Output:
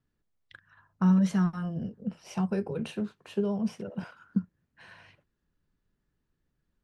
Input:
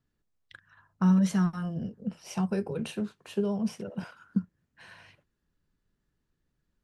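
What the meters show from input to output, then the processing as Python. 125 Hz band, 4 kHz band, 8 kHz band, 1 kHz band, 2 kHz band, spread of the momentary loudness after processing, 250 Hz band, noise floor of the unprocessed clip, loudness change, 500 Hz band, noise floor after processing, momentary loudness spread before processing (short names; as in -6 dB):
0.0 dB, -2.5 dB, n/a, 0.0 dB, -0.5 dB, 15 LU, 0.0 dB, -80 dBFS, 0.0 dB, 0.0 dB, -80 dBFS, 15 LU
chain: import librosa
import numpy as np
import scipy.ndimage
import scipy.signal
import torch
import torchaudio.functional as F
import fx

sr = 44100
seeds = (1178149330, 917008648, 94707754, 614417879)

y = fx.high_shelf(x, sr, hz=5700.0, db=-8.5)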